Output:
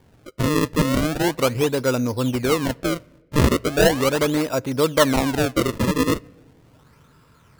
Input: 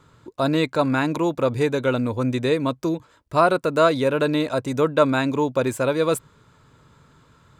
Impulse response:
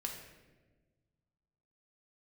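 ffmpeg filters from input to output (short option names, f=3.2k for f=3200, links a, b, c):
-filter_complex "[0:a]acrusher=samples=33:mix=1:aa=0.000001:lfo=1:lforange=52.8:lforate=0.38,asplit=2[a][b];[1:a]atrim=start_sample=2205,highshelf=f=8.1k:g=-5.5[c];[b][c]afir=irnorm=-1:irlink=0,volume=-20.5dB[d];[a][d]amix=inputs=2:normalize=0"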